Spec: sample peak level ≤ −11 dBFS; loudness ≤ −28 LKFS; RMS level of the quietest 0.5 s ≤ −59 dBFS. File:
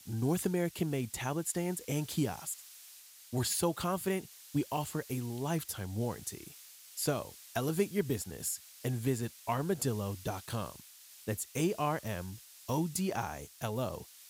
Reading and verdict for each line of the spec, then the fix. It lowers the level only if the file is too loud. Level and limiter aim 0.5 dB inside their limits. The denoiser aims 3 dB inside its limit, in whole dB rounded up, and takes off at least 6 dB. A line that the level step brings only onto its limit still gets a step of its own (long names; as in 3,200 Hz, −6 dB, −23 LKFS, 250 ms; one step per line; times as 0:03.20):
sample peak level −17.5 dBFS: in spec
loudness −35.5 LKFS: in spec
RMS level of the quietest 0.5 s −55 dBFS: out of spec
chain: broadband denoise 7 dB, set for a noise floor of −55 dBFS